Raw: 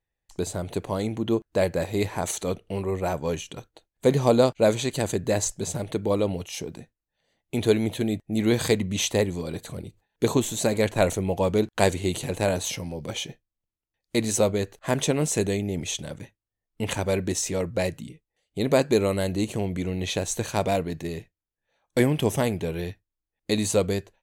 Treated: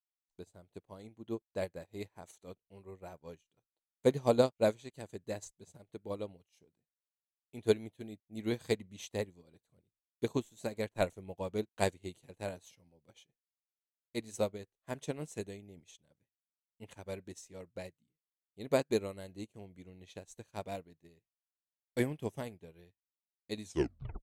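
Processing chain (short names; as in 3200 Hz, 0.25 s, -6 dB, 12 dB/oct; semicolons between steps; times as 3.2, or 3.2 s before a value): tape stop at the end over 0.59 s; upward expander 2.5:1, over -39 dBFS; gain -5.5 dB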